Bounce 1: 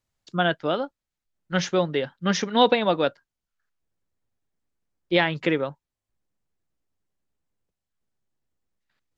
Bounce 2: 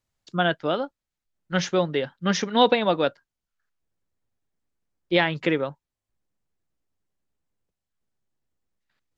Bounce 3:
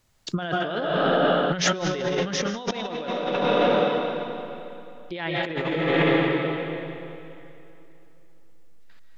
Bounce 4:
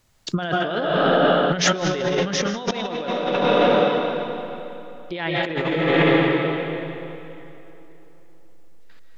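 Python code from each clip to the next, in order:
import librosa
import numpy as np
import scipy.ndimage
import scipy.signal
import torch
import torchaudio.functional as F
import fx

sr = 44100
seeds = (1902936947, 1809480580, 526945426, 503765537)

y1 = x
y2 = fx.rev_freeverb(y1, sr, rt60_s=2.9, hf_ratio=0.85, predelay_ms=100, drr_db=2.5)
y2 = fx.over_compress(y2, sr, threshold_db=-33.0, ratio=-1.0)
y2 = y2 * librosa.db_to_amplitude(7.5)
y3 = fx.echo_tape(y2, sr, ms=154, feedback_pct=83, wet_db=-22, lp_hz=3200.0, drive_db=4.0, wow_cents=26)
y3 = y3 * librosa.db_to_amplitude(3.5)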